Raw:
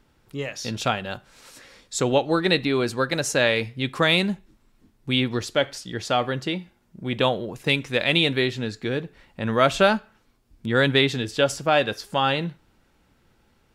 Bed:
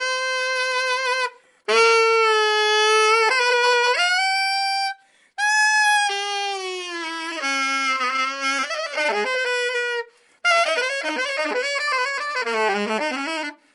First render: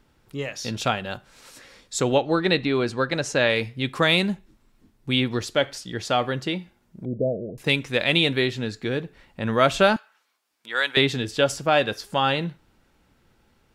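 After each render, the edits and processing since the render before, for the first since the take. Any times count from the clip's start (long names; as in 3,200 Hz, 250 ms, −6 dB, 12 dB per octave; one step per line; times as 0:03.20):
0:02.17–0:03.50: high-frequency loss of the air 66 metres
0:07.05–0:07.58: Chebyshev low-pass with heavy ripple 670 Hz, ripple 3 dB
0:09.96–0:10.97: high-pass filter 920 Hz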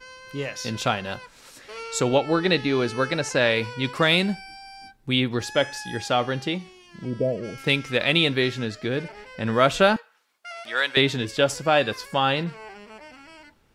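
mix in bed −21 dB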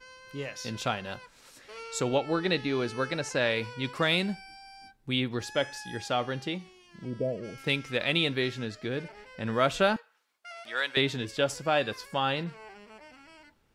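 level −6.5 dB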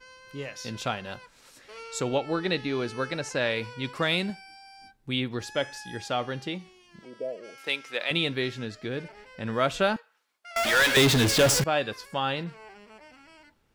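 0:04.30–0:04.79: low-shelf EQ 160 Hz −10 dB
0:07.01–0:08.11: high-pass filter 480 Hz
0:10.56–0:11.64: power curve on the samples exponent 0.35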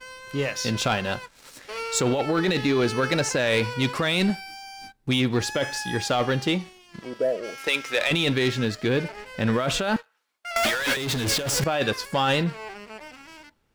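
compressor whose output falls as the input rises −29 dBFS, ratio −1
leveller curve on the samples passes 2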